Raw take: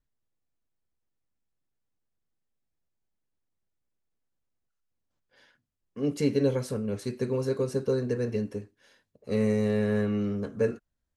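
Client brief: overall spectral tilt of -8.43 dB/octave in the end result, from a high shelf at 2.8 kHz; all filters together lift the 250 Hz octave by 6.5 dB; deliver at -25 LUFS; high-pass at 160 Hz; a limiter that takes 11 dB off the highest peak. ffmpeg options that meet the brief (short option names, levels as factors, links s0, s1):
-af "highpass=160,equalizer=f=250:t=o:g=9,highshelf=f=2800:g=-6.5,volume=1.5,alimiter=limit=0.158:level=0:latency=1"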